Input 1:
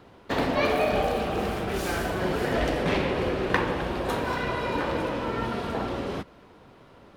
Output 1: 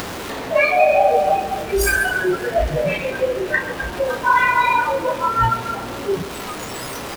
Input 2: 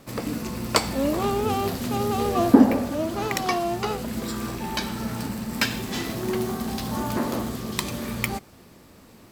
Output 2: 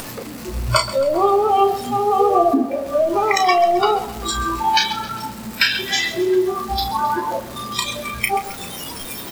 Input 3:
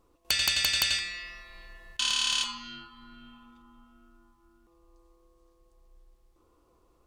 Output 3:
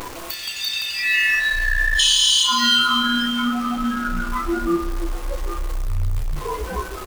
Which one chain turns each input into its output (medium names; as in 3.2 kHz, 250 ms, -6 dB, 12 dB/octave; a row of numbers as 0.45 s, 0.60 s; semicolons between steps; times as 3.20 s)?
jump at every zero crossing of -25 dBFS; compression 3:1, threshold -28 dBFS; bass shelf 330 Hz -5 dB; doubling 33 ms -9 dB; waveshaping leveller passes 2; flange 0.82 Hz, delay 9.8 ms, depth 8.1 ms, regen +69%; spectral noise reduction 19 dB; upward compressor, threshold -43 dBFS; dynamic bell 240 Hz, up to -5 dB, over -46 dBFS, Q 5; bit-crushed delay 133 ms, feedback 55%, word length 9-bit, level -14.5 dB; normalise loudness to -19 LUFS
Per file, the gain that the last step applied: +16.5 dB, +13.0 dB, +13.0 dB